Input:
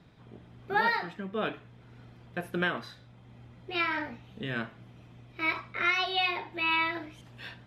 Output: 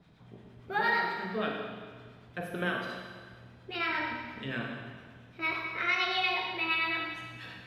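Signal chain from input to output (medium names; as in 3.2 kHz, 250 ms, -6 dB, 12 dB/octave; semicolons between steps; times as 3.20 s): hum notches 50/100/150/200/250/300/350 Hz; harmonic tremolo 8.7 Hz, crossover 920 Hz; Schroeder reverb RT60 1.6 s, combs from 33 ms, DRR 0.5 dB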